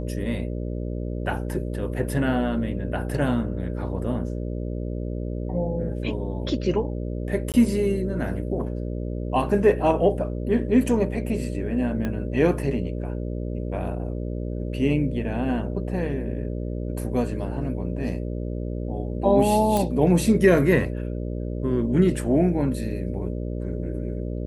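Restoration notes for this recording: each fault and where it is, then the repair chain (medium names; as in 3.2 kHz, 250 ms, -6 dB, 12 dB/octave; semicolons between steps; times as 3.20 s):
buzz 60 Hz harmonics 10 -29 dBFS
7.52–7.54 s: dropout 18 ms
12.05 s: pop -16 dBFS
19.77 s: pop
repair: de-click; de-hum 60 Hz, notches 10; interpolate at 7.52 s, 18 ms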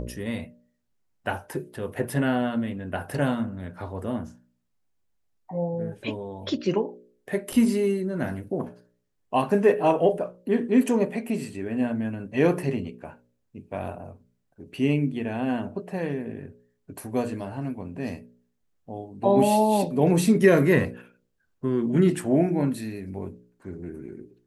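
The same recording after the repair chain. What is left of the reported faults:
12.05 s: pop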